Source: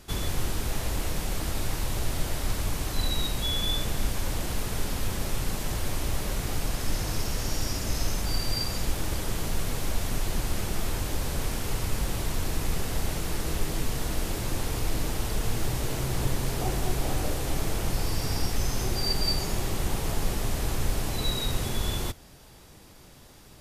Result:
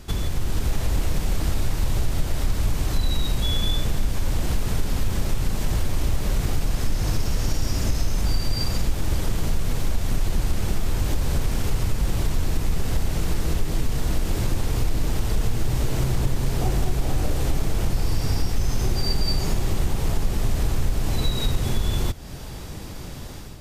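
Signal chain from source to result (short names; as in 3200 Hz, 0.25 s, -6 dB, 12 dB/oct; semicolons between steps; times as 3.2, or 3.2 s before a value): bell 11000 Hz -4.5 dB 0.39 oct; in parallel at -10.5 dB: soft clip -29.5 dBFS, distortion -9 dB; on the sum: AGC gain up to 8 dB; low shelf 240 Hz +7.5 dB; compressor 2.5:1, threshold -24 dBFS, peak gain reduction 13.5 dB; gain +1.5 dB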